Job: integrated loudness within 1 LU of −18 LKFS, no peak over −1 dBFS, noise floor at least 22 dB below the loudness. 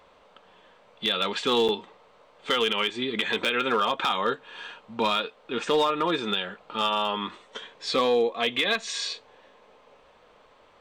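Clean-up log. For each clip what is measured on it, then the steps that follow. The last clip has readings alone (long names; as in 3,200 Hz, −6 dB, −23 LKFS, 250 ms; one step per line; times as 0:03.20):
share of clipped samples 0.3%; peaks flattened at −16.0 dBFS; number of dropouts 1; longest dropout 7.2 ms; integrated loudness −26.0 LKFS; sample peak −16.0 dBFS; target loudness −18.0 LKFS
→ clipped peaks rebuilt −16 dBFS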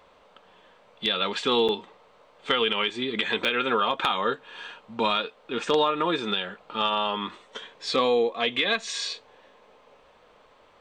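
share of clipped samples 0.0%; number of dropouts 1; longest dropout 7.2 ms
→ repair the gap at 0:01.68, 7.2 ms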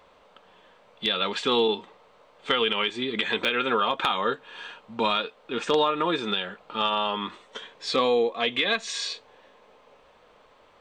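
number of dropouts 0; integrated loudness −25.5 LKFS; sample peak −7.0 dBFS; target loudness −18.0 LKFS
→ level +7.5 dB
brickwall limiter −1 dBFS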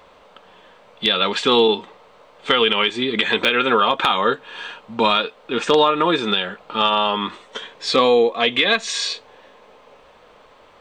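integrated loudness −18.5 LKFS; sample peak −1.0 dBFS; background noise floor −50 dBFS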